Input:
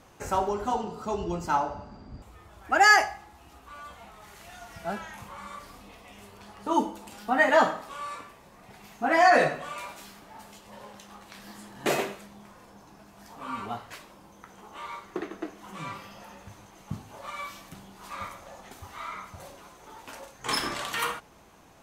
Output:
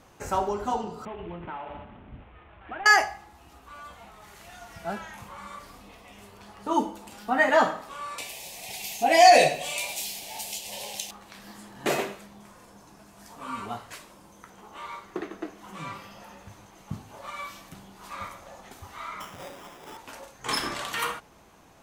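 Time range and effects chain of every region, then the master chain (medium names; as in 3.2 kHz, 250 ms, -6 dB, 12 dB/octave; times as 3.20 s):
1.05–2.86 s: CVSD coder 16 kbps + hum notches 50/100/150/200/250/300/350/400 Hz + compression, threshold -34 dBFS
8.18–11.11 s: FFT filter 160 Hz 0 dB, 240 Hz -3 dB, 780 Hz +6 dB, 1.3 kHz -17 dB, 2.4 kHz +10 dB, 11 kHz +15 dB + tape noise reduction on one side only encoder only
12.40–14.50 s: peaking EQ 9 kHz +6 dB 1.2 oct + band-stop 800 Hz, Q 23
19.20–19.97 s: square wave that keeps the level + high-pass 180 Hz + sample-rate reducer 4.3 kHz
whole clip: none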